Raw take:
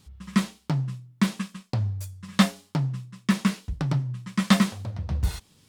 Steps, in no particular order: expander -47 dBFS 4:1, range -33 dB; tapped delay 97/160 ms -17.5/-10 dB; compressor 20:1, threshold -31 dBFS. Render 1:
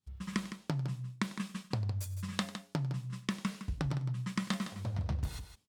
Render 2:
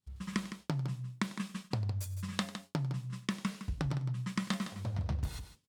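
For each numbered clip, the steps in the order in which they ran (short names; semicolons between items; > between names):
compressor > expander > tapped delay; compressor > tapped delay > expander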